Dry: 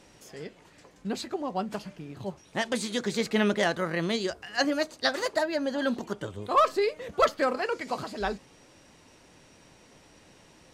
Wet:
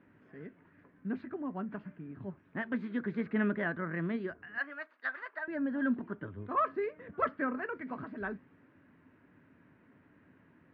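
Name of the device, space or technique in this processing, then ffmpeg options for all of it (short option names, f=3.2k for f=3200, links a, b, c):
bass cabinet: -filter_complex "[0:a]highpass=84,equalizer=f=98:t=q:w=4:g=7,equalizer=f=170:t=q:w=4:g=4,equalizer=f=260:t=q:w=4:g=9,equalizer=f=520:t=q:w=4:g=-6,equalizer=f=790:t=q:w=4:g=-8,equalizer=f=1.6k:t=q:w=4:g=6,lowpass=f=2k:w=0.5412,lowpass=f=2k:w=1.3066,asettb=1/sr,asplit=3[a][b][c];[a]atrim=end=4.584[d];[b]atrim=start=4.58:end=5.48,asetpts=PTS-STARTPTS,afade=t=in:d=0.004:c=qsin,afade=t=out:st=0.896:d=0.004:c=qsin,highpass=1k[e];[c]atrim=start=5.476[f];[d][e]acrossfade=d=0.004:c1=hsin:c2=qsin[g];[g][f]acrossfade=d=0.004:c1=qsin:c2=hsin,volume=-7.5dB"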